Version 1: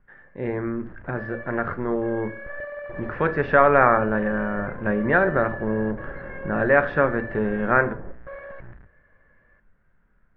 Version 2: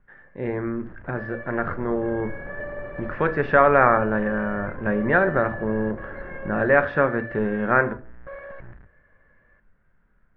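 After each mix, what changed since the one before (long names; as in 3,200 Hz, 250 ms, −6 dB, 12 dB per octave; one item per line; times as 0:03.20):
second sound: entry −1.30 s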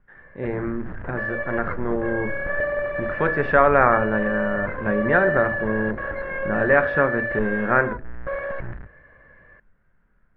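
first sound +10.0 dB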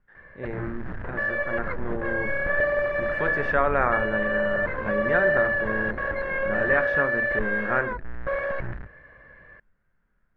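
speech −7.5 dB
master: remove high-frequency loss of the air 230 metres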